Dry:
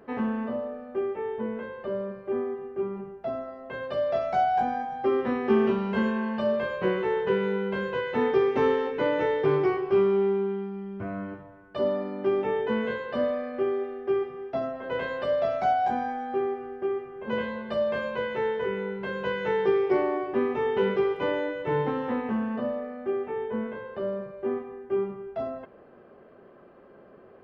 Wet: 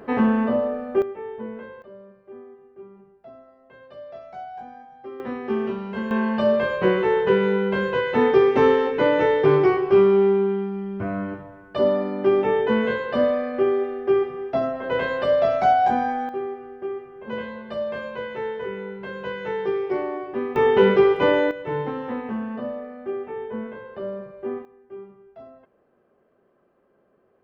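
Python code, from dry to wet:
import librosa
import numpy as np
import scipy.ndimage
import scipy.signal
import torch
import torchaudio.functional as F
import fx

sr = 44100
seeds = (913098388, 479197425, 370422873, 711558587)

y = fx.gain(x, sr, db=fx.steps((0.0, 9.5), (1.02, -2.0), (1.82, -13.0), (5.2, -3.0), (6.11, 6.5), (16.29, -1.5), (20.56, 9.0), (21.51, -0.5), (24.65, -12.0)))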